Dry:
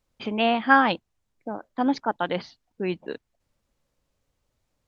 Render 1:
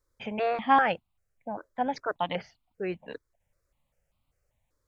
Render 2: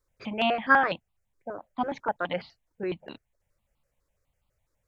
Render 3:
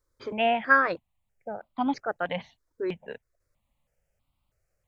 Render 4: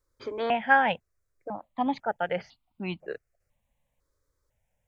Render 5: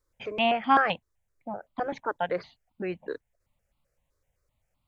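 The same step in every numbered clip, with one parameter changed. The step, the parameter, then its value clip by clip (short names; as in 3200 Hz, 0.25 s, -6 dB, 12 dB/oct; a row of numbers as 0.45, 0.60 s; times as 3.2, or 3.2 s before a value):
step phaser, rate: 5.1, 12, 3.1, 2, 7.8 Hz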